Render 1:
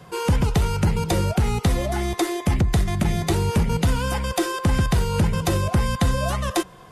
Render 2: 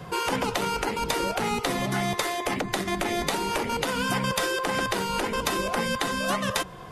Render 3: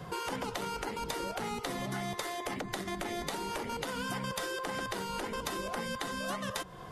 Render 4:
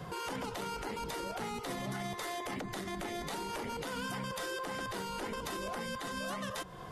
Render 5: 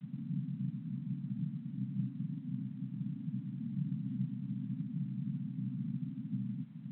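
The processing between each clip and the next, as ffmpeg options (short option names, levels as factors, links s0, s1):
-filter_complex "[0:a]afftfilt=real='re*lt(hypot(re,im),0.282)':imag='im*lt(hypot(re,im),0.282)':win_size=1024:overlap=0.75,equalizer=f=9200:w=0.61:g=-4.5,asplit=2[s0][s1];[s1]alimiter=limit=0.0794:level=0:latency=1:release=495,volume=0.794[s2];[s0][s2]amix=inputs=2:normalize=0"
-af "equalizer=f=2500:w=5.4:g=-4,acompressor=threshold=0.0224:ratio=2,volume=0.631"
-af "alimiter=level_in=1.78:limit=0.0631:level=0:latency=1:release=25,volume=0.562"
-af "aresample=11025,acrusher=samples=34:mix=1:aa=0.000001,aresample=44100,asuperpass=centerf=190:order=12:qfactor=1.3,volume=2.24" -ar 8000 -c:a adpcm_g726 -b:a 24k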